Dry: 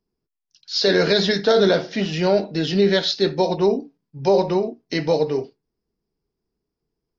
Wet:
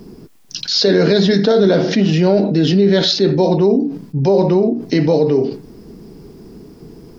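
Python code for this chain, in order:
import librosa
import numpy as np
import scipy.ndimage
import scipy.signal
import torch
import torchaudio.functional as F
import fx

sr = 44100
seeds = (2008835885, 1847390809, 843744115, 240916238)

y = fx.peak_eq(x, sr, hz=230.0, db=11.0, octaves=2.3)
y = fx.env_flatten(y, sr, amount_pct=70)
y = y * librosa.db_to_amplitude(-5.0)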